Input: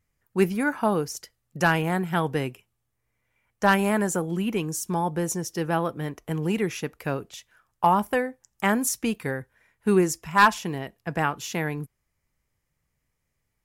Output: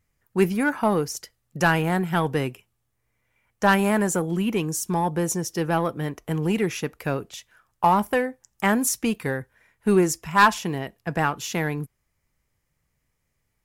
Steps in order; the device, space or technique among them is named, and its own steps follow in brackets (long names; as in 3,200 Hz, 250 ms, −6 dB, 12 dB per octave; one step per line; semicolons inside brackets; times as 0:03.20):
parallel distortion (in parallel at −8.5 dB: hard clipping −23 dBFS, distortion −6 dB)